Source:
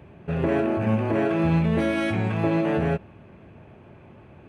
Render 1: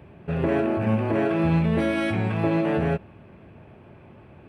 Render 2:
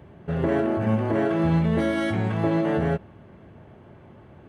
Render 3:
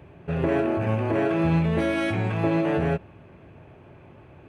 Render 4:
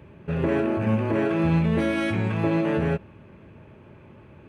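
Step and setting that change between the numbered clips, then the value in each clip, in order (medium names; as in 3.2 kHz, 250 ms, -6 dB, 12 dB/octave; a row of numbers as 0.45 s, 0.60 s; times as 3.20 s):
band-stop, frequency: 6.6 kHz, 2.5 kHz, 210 Hz, 720 Hz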